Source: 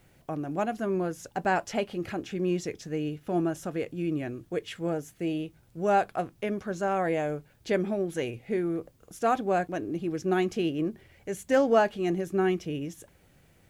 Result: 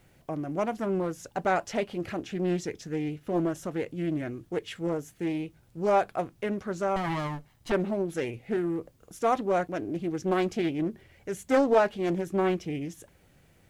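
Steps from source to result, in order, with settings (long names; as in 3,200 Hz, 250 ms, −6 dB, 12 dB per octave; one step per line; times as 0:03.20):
0:06.96–0:07.72: lower of the sound and its delayed copy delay 1 ms
highs frequency-modulated by the lows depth 0.33 ms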